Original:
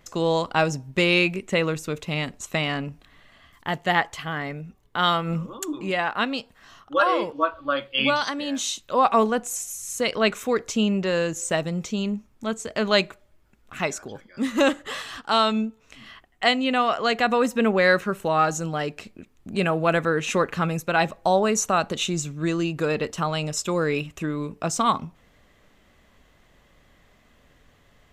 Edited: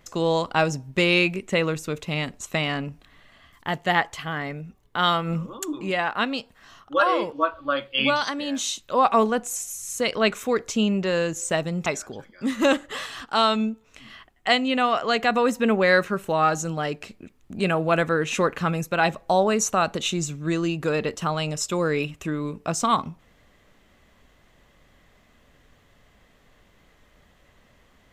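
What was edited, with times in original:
0:11.86–0:13.82: remove

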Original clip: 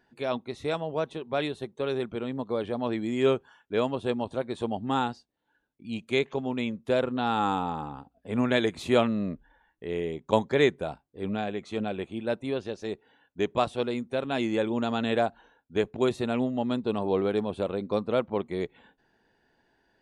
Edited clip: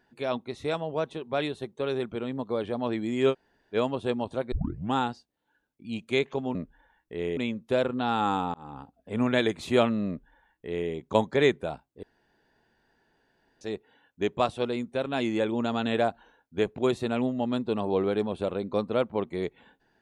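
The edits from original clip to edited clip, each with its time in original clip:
0:03.32–0:03.74: fill with room tone, crossfade 0.06 s
0:04.52: tape start 0.41 s
0:07.72–0:07.98: fade in
0:09.26–0:10.08: duplicate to 0:06.55
0:11.21–0:12.79: fill with room tone

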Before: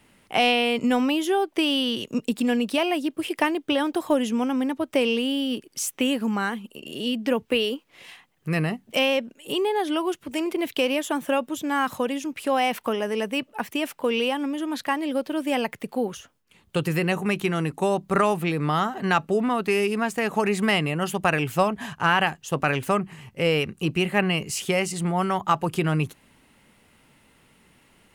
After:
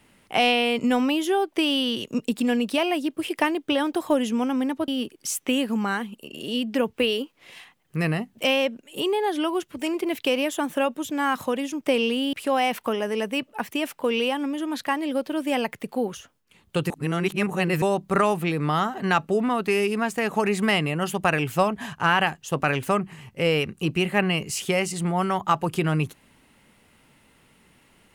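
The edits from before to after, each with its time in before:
0:04.88–0:05.40: move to 0:12.33
0:16.90–0:17.82: reverse

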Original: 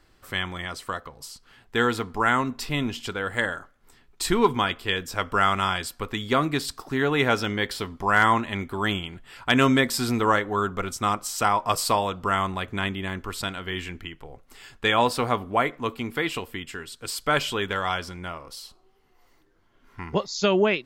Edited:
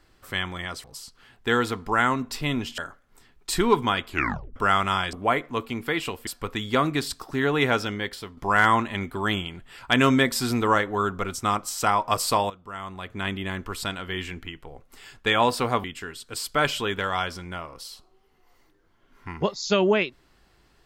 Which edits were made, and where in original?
0:00.84–0:01.12: remove
0:03.06–0:03.50: remove
0:04.80: tape stop 0.48 s
0:07.21–0:07.95: fade out, to −9.5 dB
0:12.08–0:12.94: fade in quadratic, from −16 dB
0:15.42–0:16.56: move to 0:05.85

